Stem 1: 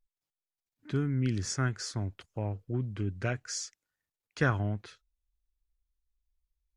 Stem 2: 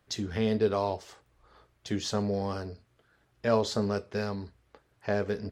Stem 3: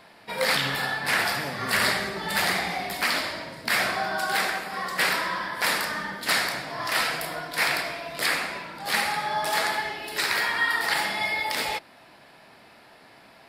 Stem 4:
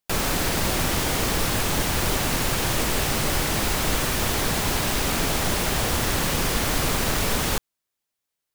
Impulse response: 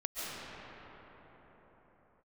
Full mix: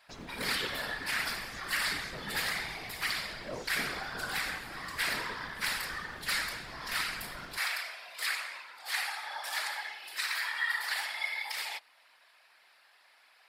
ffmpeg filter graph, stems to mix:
-filter_complex "[0:a]highpass=260,adelay=50,volume=0.211[s0];[1:a]volume=0.299[s1];[2:a]highpass=1200,volume=0.841[s2];[3:a]highshelf=f=11000:g=-7,alimiter=limit=0.1:level=0:latency=1:release=140,adynamicsmooth=sensitivity=6:basefreq=1400,volume=0.266[s3];[s0][s1][s2][s3]amix=inputs=4:normalize=0,afftfilt=real='hypot(re,im)*cos(2*PI*random(0))':imag='hypot(re,im)*sin(2*PI*random(1))':win_size=512:overlap=0.75,equalizer=f=93:w=6.5:g=-13"

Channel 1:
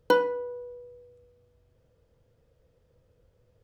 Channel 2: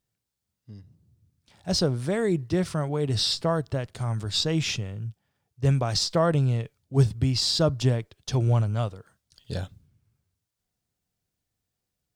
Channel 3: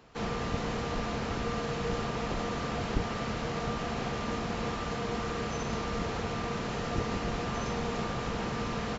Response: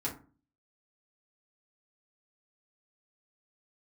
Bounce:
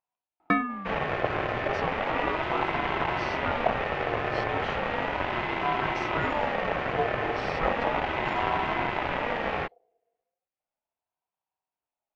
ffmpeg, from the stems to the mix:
-filter_complex "[0:a]adelay=400,volume=0.891[s0];[1:a]volume=0.447[s1];[2:a]equalizer=f=370:w=1.5:g=-4,acontrast=57,aeval=exprs='0.251*(cos(1*acos(clip(val(0)/0.251,-1,1)))-cos(1*PI/2))+0.0447*(cos(4*acos(clip(val(0)/0.251,-1,1)))-cos(4*PI/2))':c=same,adelay=700,volume=1[s2];[s0][s1][s2]amix=inputs=3:normalize=0,lowpass=f=1900:t=q:w=1.7,aeval=exprs='val(0)*sin(2*PI*720*n/s+720*0.2/0.35*sin(2*PI*0.35*n/s))':c=same"

